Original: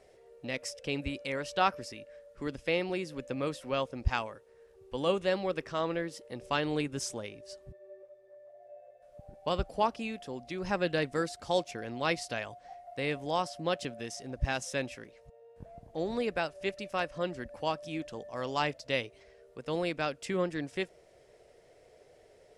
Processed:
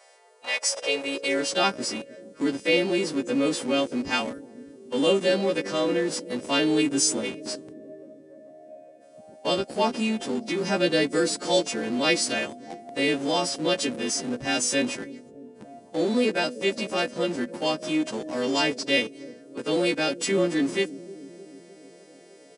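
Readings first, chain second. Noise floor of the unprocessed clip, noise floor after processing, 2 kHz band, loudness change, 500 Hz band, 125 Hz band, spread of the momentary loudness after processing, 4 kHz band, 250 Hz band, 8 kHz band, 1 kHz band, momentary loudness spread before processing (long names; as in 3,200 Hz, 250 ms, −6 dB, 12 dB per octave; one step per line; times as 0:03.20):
−60 dBFS, −51 dBFS, +8.0 dB, +8.5 dB, +8.0 dB, +1.5 dB, 13 LU, +12.5 dB, +11.5 dB, +16.0 dB, +3.0 dB, 18 LU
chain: every partial snapped to a pitch grid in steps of 2 semitones
dynamic equaliser 1,100 Hz, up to −7 dB, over −48 dBFS, Q 1.5
in parallel at −8.5 dB: comparator with hysteresis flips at −41 dBFS
on the sum: high-pass filter sweep 860 Hz → 250 Hz, 0:00.54–0:01.51
on a send: bucket-brigade delay 305 ms, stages 1,024, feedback 63%, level −16 dB
on the sum: downsampling to 22,050 Hz
level +5 dB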